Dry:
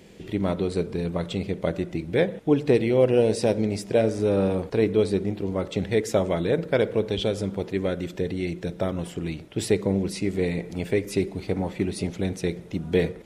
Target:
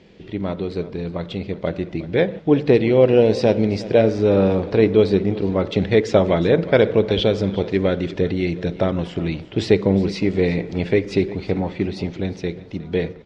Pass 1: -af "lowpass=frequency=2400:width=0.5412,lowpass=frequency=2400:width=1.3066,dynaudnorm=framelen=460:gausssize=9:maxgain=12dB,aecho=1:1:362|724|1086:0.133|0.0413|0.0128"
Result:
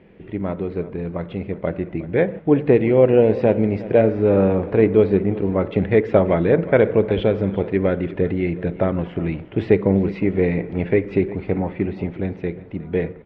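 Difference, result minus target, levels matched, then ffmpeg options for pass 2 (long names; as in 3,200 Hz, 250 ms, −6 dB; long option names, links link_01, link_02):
4,000 Hz band −12.5 dB
-af "lowpass=frequency=5100:width=0.5412,lowpass=frequency=5100:width=1.3066,dynaudnorm=framelen=460:gausssize=9:maxgain=12dB,aecho=1:1:362|724|1086:0.133|0.0413|0.0128"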